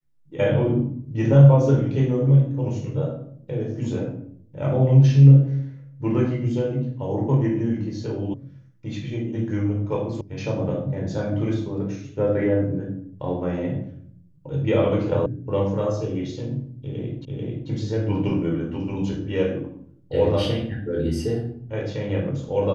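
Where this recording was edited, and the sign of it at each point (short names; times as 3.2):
8.34 sound cut off
10.21 sound cut off
15.26 sound cut off
17.25 repeat of the last 0.44 s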